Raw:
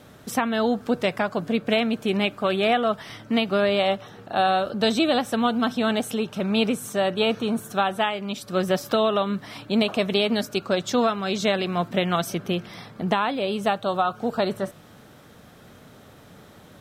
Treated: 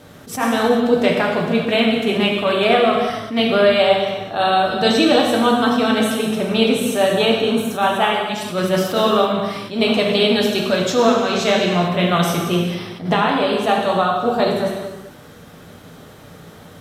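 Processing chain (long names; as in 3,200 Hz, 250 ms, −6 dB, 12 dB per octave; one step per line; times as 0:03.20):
reverb whose tail is shaped and stops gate 470 ms falling, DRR −1.5 dB
level that may rise only so fast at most 150 dB per second
level +3.5 dB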